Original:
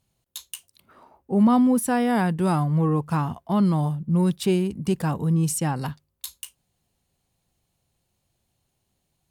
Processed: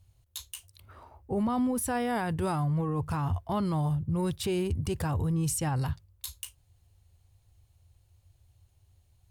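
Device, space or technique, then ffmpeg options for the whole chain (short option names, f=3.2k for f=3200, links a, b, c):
car stereo with a boomy subwoofer: -af "lowshelf=f=130:t=q:w=3:g=12,alimiter=limit=-22.5dB:level=0:latency=1:release=36"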